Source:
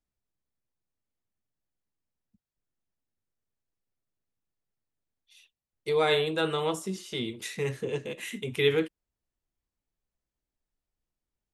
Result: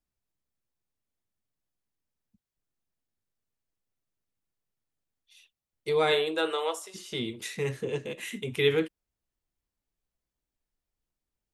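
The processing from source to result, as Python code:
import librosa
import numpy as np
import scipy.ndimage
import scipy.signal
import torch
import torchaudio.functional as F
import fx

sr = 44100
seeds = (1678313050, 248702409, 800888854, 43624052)

y = fx.highpass(x, sr, hz=fx.line((6.11, 180.0), (6.94, 620.0)), slope=24, at=(6.11, 6.94), fade=0.02)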